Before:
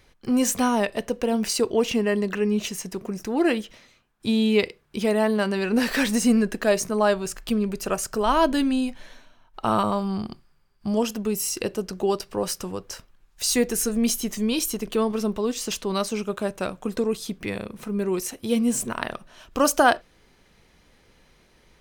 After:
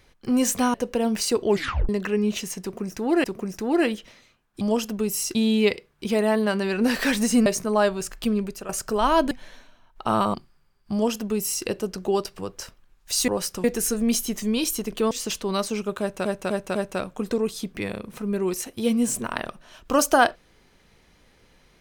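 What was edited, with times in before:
0:00.74–0:01.02: remove
0:01.76: tape stop 0.41 s
0:02.90–0:03.52: repeat, 2 plays
0:06.38–0:06.71: remove
0:07.64–0:07.94: fade out, to −14 dB
0:08.56–0:08.89: remove
0:09.92–0:10.29: remove
0:10.87–0:11.61: duplicate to 0:04.27
0:12.34–0:12.70: move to 0:13.59
0:15.06–0:15.52: remove
0:16.41–0:16.66: repeat, 4 plays

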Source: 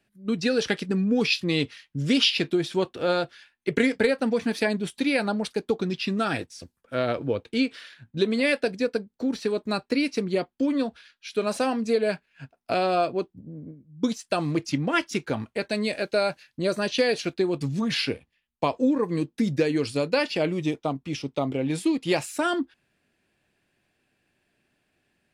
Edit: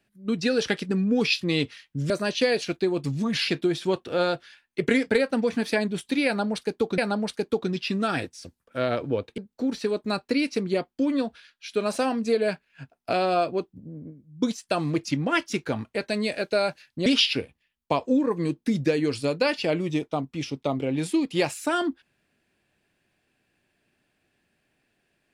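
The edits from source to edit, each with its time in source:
0:02.10–0:02.37: swap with 0:16.67–0:18.05
0:05.15–0:05.87: repeat, 2 plays
0:07.55–0:08.99: remove

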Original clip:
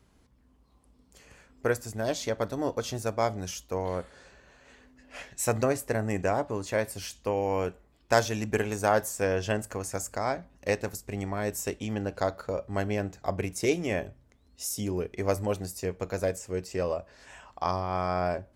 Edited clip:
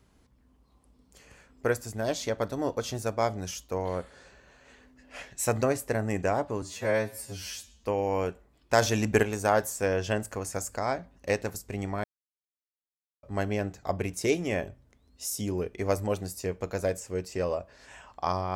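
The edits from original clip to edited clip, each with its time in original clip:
0:06.62–0:07.23: time-stretch 2×
0:08.21–0:08.62: clip gain +4.5 dB
0:11.43–0:12.62: silence

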